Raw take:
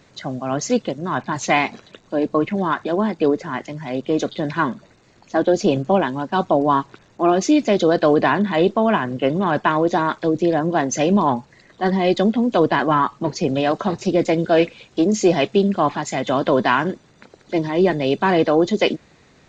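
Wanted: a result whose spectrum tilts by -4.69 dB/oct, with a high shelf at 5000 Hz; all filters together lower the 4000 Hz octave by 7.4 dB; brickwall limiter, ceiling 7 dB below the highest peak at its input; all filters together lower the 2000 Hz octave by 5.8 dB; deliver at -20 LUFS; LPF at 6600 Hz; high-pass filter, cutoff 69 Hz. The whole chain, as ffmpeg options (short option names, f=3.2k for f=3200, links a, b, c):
-af "highpass=69,lowpass=6.6k,equalizer=f=2k:t=o:g=-6,equalizer=f=4k:t=o:g=-5.5,highshelf=f=5k:g=-4,volume=2.5dB,alimiter=limit=-9dB:level=0:latency=1"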